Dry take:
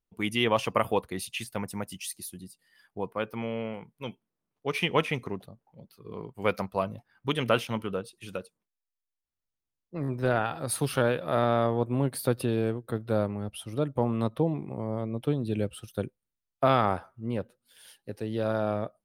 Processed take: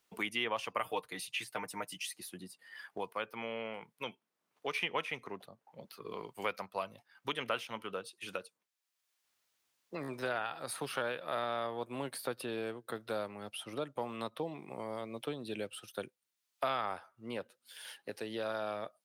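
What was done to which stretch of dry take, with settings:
0:00.80–0:02.20: comb filter 6.6 ms
whole clip: high-pass filter 1,100 Hz 6 dB per octave; high-shelf EQ 7,700 Hz −5.5 dB; multiband upward and downward compressor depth 70%; level −2.5 dB

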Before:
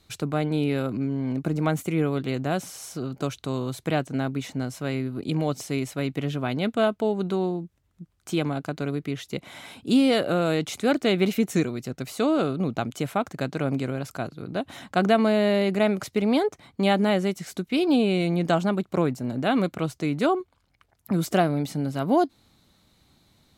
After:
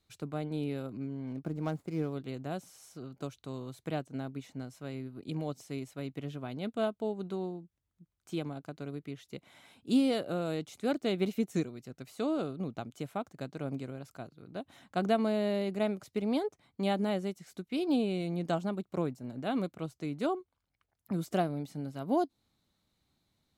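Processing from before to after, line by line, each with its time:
0:01.27–0:02.13: running median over 15 samples
whole clip: dynamic equaliser 1,900 Hz, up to −5 dB, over −39 dBFS, Q 0.85; expander for the loud parts 1.5 to 1, over −35 dBFS; level −6 dB

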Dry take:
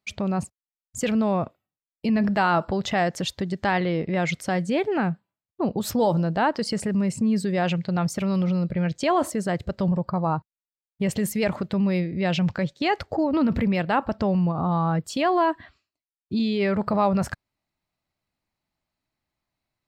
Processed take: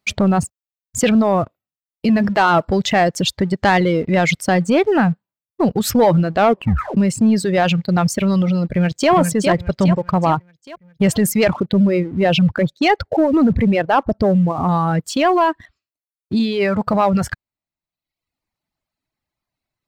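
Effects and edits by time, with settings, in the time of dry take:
0:06.35: tape stop 0.62 s
0:08.67–0:09.11: delay throw 410 ms, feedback 50%, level −4 dB
0:11.53–0:14.69: spectral envelope exaggerated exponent 1.5
whole clip: speech leveller 2 s; reverb reduction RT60 0.94 s; leveller curve on the samples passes 1; level +6 dB

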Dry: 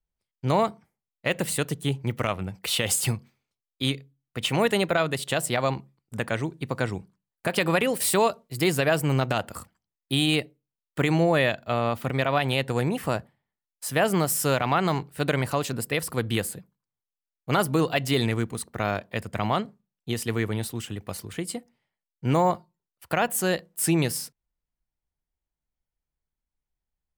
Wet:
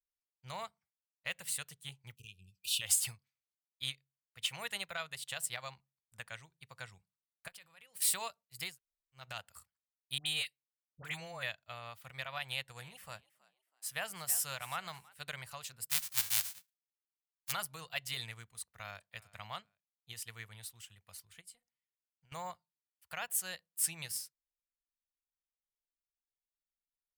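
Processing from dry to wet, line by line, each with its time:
0:02.15–0:02.81: time-frequency box erased 470–2,400 Hz
0:07.48–0:08.02: output level in coarse steps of 18 dB
0:08.71–0:09.20: fill with room tone, crossfade 0.16 s
0:10.18–0:11.43: all-pass dispersion highs, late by 78 ms, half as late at 1,100 Hz
0:12.45–0:15.14: echo with shifted repeats 324 ms, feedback 31%, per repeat +70 Hz, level −16.5 dB
0:15.89–0:17.51: spectral envelope flattened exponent 0.1
0:18.61–0:19.03: delay throw 390 ms, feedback 25%, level −16.5 dB
0:21.41–0:22.32: downward compressor, threshold −35 dBFS
whole clip: guitar amp tone stack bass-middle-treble 10-0-10; notch filter 420 Hz, Q 12; expander for the loud parts 1.5 to 1, over −51 dBFS; level −3 dB

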